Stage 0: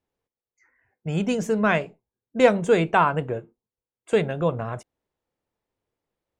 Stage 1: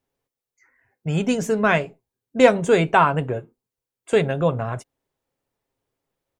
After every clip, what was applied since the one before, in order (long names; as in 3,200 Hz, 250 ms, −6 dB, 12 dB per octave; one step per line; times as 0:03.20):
high-shelf EQ 6,400 Hz +4 dB
comb filter 7.4 ms, depth 32%
level +2.5 dB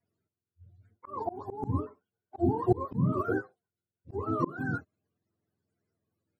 frequency axis turned over on the octave scale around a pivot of 420 Hz
volume swells 372 ms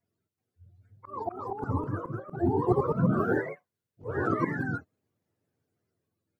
delay with pitch and tempo change per echo 379 ms, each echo +2 semitones, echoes 3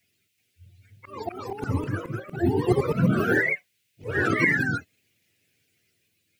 high shelf with overshoot 1,600 Hz +14 dB, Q 3
level +4 dB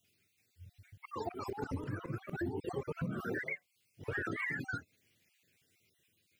time-frequency cells dropped at random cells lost 30%
downward compressor 8 to 1, threshold −33 dBFS, peak gain reduction 17 dB
level −2 dB